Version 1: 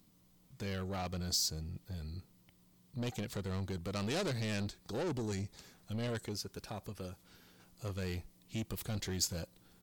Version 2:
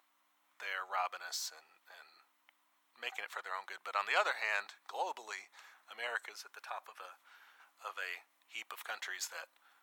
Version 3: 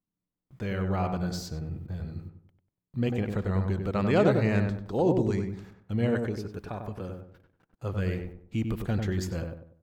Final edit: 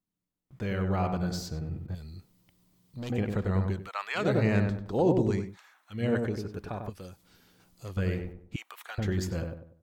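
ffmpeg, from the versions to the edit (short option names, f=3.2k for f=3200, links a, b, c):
-filter_complex "[0:a]asplit=2[a][b];[1:a]asplit=3[c][d][e];[2:a]asplit=6[f][g][h][i][j][k];[f]atrim=end=1.952[l];[a]atrim=start=1.948:end=3.102[m];[g]atrim=start=3.098:end=3.9[n];[c]atrim=start=3.66:end=4.38[o];[h]atrim=start=4.14:end=5.58[p];[d]atrim=start=5.34:end=6.12[q];[i]atrim=start=5.88:end=6.902[r];[b]atrim=start=6.898:end=7.972[s];[j]atrim=start=7.968:end=8.562[t];[e]atrim=start=8.558:end=8.982[u];[k]atrim=start=8.978[v];[l][m]acrossfade=d=0.004:c1=hsin:c2=hsin[w];[w][n]acrossfade=d=0.004:c1=hsin:c2=hsin[x];[x][o]acrossfade=d=0.24:c1=tri:c2=tri[y];[y][p]acrossfade=d=0.24:c1=tri:c2=tri[z];[z][q]acrossfade=d=0.24:c1=tri:c2=tri[aa];[aa][r]acrossfade=d=0.24:c1=tri:c2=tri[ab];[ab][s]acrossfade=d=0.004:c1=hsin:c2=hsin[ac];[ac][t]acrossfade=d=0.004:c1=hsin:c2=hsin[ad];[ad][u]acrossfade=d=0.004:c1=hsin:c2=hsin[ae];[ae][v]acrossfade=d=0.004:c1=hsin:c2=hsin"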